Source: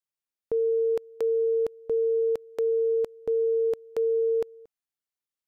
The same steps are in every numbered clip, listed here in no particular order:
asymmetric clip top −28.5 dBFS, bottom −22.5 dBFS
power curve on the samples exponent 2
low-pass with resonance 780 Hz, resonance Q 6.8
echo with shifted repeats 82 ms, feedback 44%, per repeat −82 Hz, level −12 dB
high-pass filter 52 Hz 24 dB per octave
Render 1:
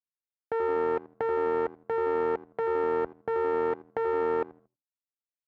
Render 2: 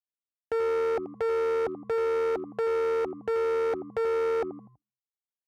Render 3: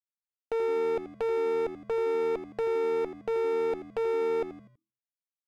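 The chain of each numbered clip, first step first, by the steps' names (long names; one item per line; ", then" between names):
asymmetric clip, then low-pass with resonance, then echo with shifted repeats, then power curve on the samples, then high-pass filter
power curve on the samples, then echo with shifted repeats, then low-pass with resonance, then asymmetric clip, then high-pass filter
low-pass with resonance, then power curve on the samples, then high-pass filter, then asymmetric clip, then echo with shifted repeats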